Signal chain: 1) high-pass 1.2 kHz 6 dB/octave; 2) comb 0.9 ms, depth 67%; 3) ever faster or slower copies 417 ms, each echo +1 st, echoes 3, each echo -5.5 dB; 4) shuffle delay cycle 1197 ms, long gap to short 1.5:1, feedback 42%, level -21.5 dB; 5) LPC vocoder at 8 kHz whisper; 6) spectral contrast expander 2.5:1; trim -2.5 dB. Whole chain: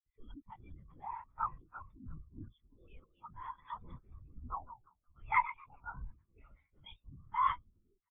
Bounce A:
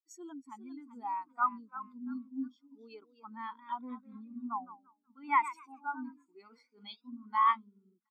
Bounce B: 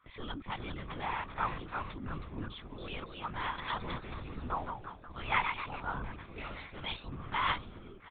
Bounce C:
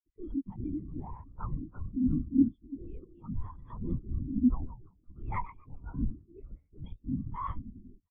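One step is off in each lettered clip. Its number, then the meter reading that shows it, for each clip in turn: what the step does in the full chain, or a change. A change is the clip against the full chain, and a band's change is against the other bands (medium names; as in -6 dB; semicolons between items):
5, 250 Hz band +11.5 dB; 6, 500 Hz band +12.0 dB; 1, 2 kHz band -27.5 dB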